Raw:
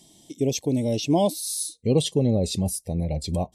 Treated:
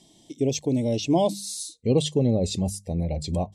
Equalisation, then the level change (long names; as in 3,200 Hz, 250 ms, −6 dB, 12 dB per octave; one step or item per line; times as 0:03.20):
dynamic equaliser 7,200 Hz, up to +6 dB, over −50 dBFS, Q 3.7
high-frequency loss of the air 51 metres
mains-hum notches 50/100/150/200 Hz
0.0 dB